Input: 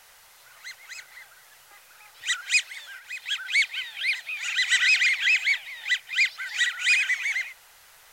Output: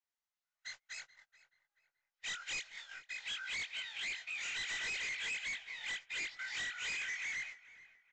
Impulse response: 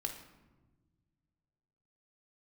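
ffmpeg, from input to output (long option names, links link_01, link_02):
-filter_complex "[0:a]afftfilt=real='re':imag='-im':win_size=2048:overlap=0.75,highshelf=frequency=6200:gain=3.5,acompressor=threshold=-36dB:ratio=2,aresample=16000,volume=35dB,asoftclip=hard,volume=-35dB,aresample=44100,agate=range=-38dB:threshold=-46dB:ratio=16:detection=peak,asplit=2[link_01][link_02];[link_02]adelay=430,lowpass=frequency=2400:poles=1,volume=-16.5dB,asplit=2[link_03][link_04];[link_04]adelay=430,lowpass=frequency=2400:poles=1,volume=0.4,asplit=2[link_05][link_06];[link_06]adelay=430,lowpass=frequency=2400:poles=1,volume=0.4[link_07];[link_03][link_05][link_07]amix=inputs=3:normalize=0[link_08];[link_01][link_08]amix=inputs=2:normalize=0,volume=-2dB"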